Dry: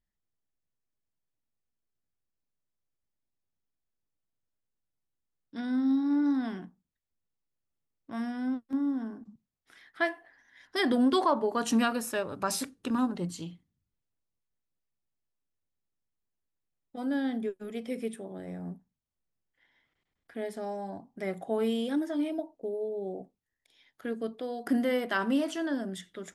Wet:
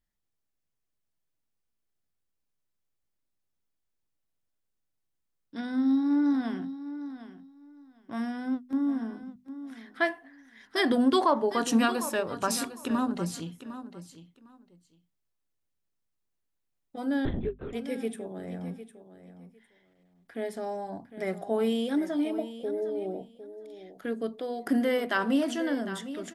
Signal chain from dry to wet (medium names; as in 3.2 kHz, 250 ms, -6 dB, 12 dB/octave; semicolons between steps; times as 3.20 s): on a send: feedback delay 755 ms, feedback 18%, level -13 dB; 17.25–17.73 s: on the sum: LPC vocoder at 8 kHz whisper; hum notches 50/100/150/200/250 Hz; trim +2 dB